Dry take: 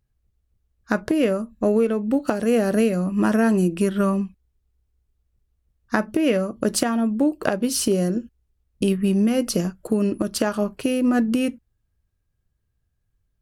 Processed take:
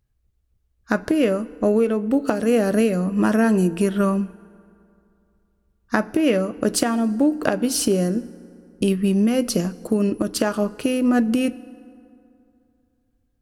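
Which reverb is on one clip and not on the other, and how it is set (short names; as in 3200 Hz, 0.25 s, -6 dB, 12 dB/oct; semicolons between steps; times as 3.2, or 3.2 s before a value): FDN reverb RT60 2.7 s, high-frequency decay 0.55×, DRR 17.5 dB; gain +1 dB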